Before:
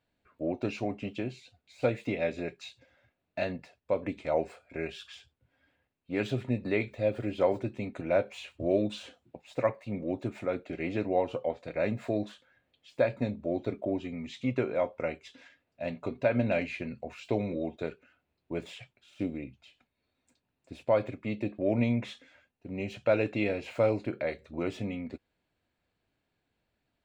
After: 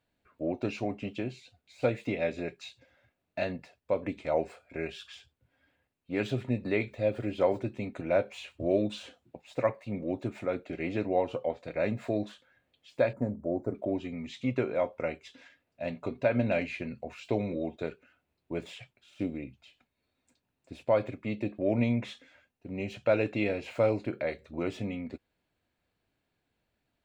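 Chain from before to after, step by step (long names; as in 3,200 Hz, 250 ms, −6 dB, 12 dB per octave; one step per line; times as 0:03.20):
0:13.13–0:13.75: Butterworth band-reject 3,200 Hz, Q 0.52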